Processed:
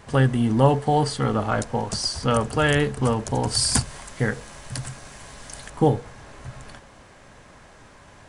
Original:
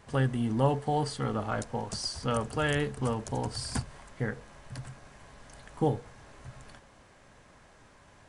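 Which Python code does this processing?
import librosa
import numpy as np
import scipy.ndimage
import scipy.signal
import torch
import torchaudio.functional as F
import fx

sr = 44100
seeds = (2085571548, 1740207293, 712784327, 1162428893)

y = fx.high_shelf(x, sr, hz=3800.0, db=11.0, at=(3.47, 5.7))
y = F.gain(torch.from_numpy(y), 8.5).numpy()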